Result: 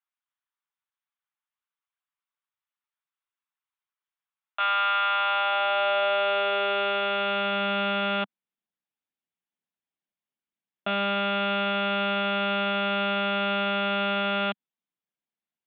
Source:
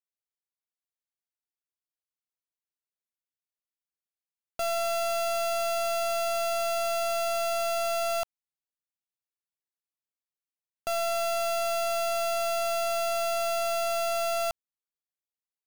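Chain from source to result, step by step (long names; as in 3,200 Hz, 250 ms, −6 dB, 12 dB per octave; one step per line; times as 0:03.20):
one-pitch LPC vocoder at 8 kHz 200 Hz
high-pass filter sweep 1,100 Hz → 200 Hz, 0:05.03–0:07.70
level +3.5 dB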